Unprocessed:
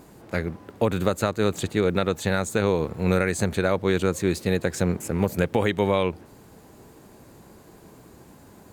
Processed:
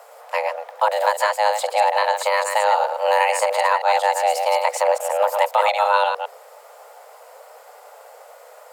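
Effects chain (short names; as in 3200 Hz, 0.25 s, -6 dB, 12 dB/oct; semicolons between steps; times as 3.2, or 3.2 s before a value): reverse delay 0.106 s, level -5.5 dB; frequency shift +410 Hz; gain +3.5 dB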